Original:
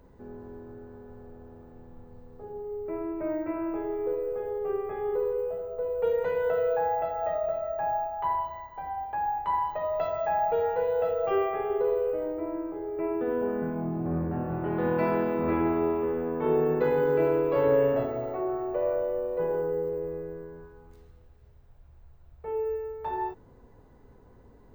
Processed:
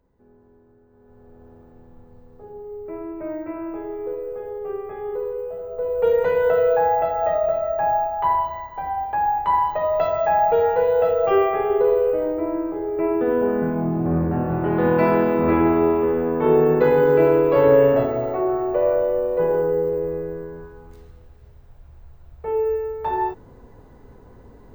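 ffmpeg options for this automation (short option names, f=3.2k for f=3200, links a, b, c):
-af "volume=8.5dB,afade=t=in:st=0.9:d=0.58:silence=0.251189,afade=t=in:st=5.5:d=0.63:silence=0.421697"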